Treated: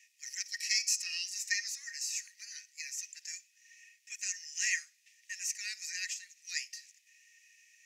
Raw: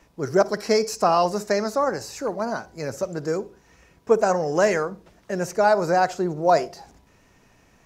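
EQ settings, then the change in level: rippled Chebyshev high-pass 1.8 kHz, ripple 9 dB; +4.0 dB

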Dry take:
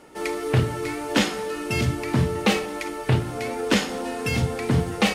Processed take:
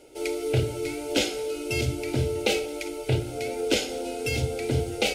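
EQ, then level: Butterworth band-stop 1.8 kHz, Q 5.9; peaking EQ 140 Hz +3.5 dB 0.34 oct; static phaser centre 450 Hz, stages 4; 0.0 dB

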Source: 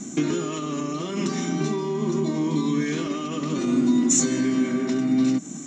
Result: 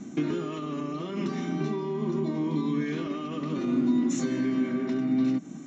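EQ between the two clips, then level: distance through air 190 m; -4.0 dB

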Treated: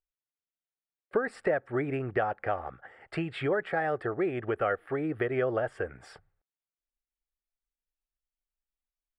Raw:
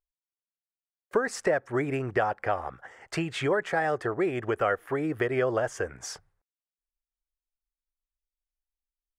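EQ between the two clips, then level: boxcar filter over 7 samples; band-stop 1 kHz, Q 6.2; -2.0 dB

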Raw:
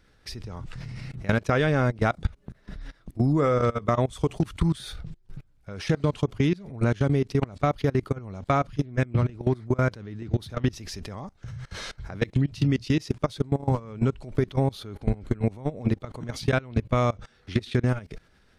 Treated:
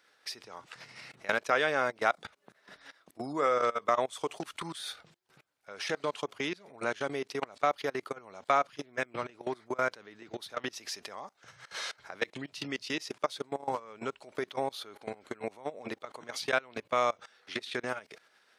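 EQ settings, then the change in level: high-pass 620 Hz 12 dB/octave; 0.0 dB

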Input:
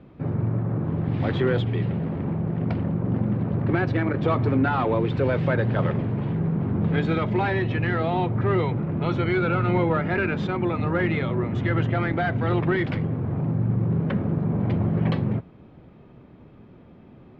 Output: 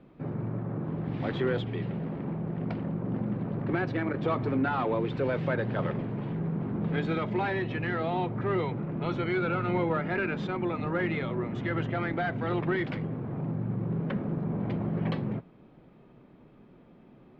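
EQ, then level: peaking EQ 85 Hz -13.5 dB 0.7 oct; -5.0 dB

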